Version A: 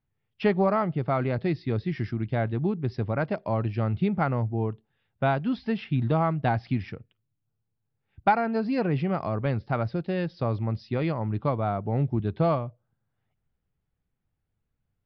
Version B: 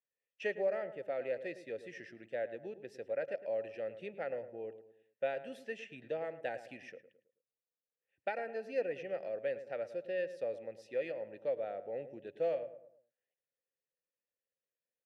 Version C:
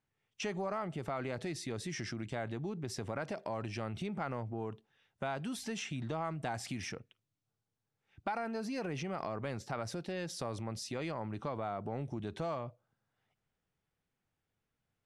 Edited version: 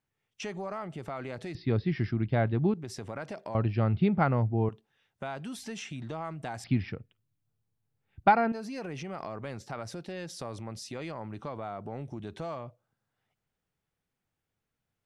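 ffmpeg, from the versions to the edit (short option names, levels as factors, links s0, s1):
-filter_complex "[0:a]asplit=3[s0][s1][s2];[2:a]asplit=4[s3][s4][s5][s6];[s3]atrim=end=1.552[s7];[s0]atrim=start=1.548:end=2.742[s8];[s4]atrim=start=2.738:end=3.552[s9];[s1]atrim=start=3.548:end=4.692[s10];[s5]atrim=start=4.688:end=6.642[s11];[s2]atrim=start=6.638:end=8.522[s12];[s6]atrim=start=8.518[s13];[s7][s8]acrossfade=d=0.004:c1=hsin:c2=hsin[s14];[s14][s9]acrossfade=d=0.004:c1=hsin:c2=hsin[s15];[s15][s10]acrossfade=d=0.004:c1=hsin:c2=hsin[s16];[s16][s11]acrossfade=d=0.004:c1=hsin:c2=hsin[s17];[s17][s12]acrossfade=d=0.004:c1=hsin:c2=hsin[s18];[s18][s13]acrossfade=d=0.004:c1=hsin:c2=hsin"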